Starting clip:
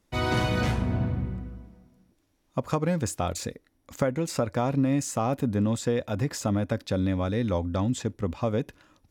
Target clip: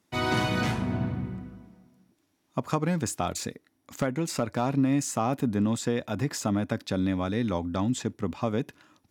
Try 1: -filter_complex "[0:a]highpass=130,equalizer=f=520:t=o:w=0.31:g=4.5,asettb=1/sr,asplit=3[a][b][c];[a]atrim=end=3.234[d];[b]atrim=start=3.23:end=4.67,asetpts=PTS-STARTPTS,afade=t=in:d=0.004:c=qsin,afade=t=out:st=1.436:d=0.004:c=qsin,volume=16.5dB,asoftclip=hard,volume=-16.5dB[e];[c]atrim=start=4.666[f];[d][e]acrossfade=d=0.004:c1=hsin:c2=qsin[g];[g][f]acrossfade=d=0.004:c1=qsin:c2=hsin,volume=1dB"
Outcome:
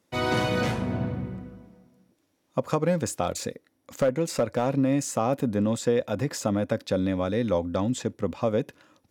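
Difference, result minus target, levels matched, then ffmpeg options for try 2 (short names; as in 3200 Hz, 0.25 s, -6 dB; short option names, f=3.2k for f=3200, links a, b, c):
500 Hz band +4.5 dB
-filter_complex "[0:a]highpass=130,equalizer=f=520:t=o:w=0.31:g=-7,asettb=1/sr,asplit=3[a][b][c];[a]atrim=end=3.234[d];[b]atrim=start=3.23:end=4.67,asetpts=PTS-STARTPTS,afade=t=in:d=0.004:c=qsin,afade=t=out:st=1.436:d=0.004:c=qsin,volume=16.5dB,asoftclip=hard,volume=-16.5dB[e];[c]atrim=start=4.666[f];[d][e]acrossfade=d=0.004:c1=hsin:c2=qsin[g];[g][f]acrossfade=d=0.004:c1=qsin:c2=hsin,volume=1dB"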